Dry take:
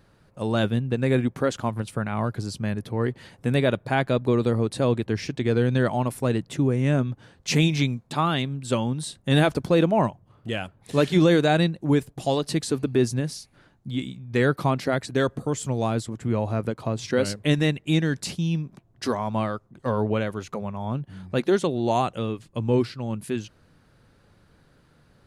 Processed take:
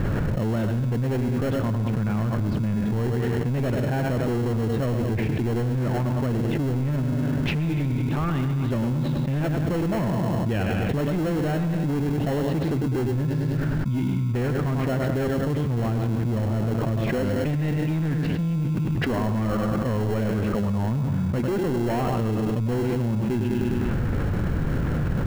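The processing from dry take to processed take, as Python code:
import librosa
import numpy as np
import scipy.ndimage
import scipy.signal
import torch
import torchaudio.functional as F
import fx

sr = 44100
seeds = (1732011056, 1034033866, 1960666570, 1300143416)

p1 = fx.echo_feedback(x, sr, ms=101, feedback_pct=51, wet_db=-11)
p2 = 10.0 ** (-25.0 / 20.0) * np.tanh(p1 / 10.0 ** (-25.0 / 20.0))
p3 = scipy.signal.sosfilt(scipy.signal.butter(4, 2600.0, 'lowpass', fs=sr, output='sos'), p2)
p4 = p3 + 10.0 ** (-13.0 / 20.0) * np.pad(p3, (int(134 * sr / 1000.0), 0))[:len(p3)]
p5 = fx.sample_hold(p4, sr, seeds[0], rate_hz=1200.0, jitter_pct=0)
p6 = p4 + F.gain(torch.from_numpy(p5), -6.0).numpy()
p7 = fx.low_shelf(p6, sr, hz=300.0, db=7.5)
p8 = fx.env_flatten(p7, sr, amount_pct=100)
y = F.gain(torch.from_numpy(p8), -7.5).numpy()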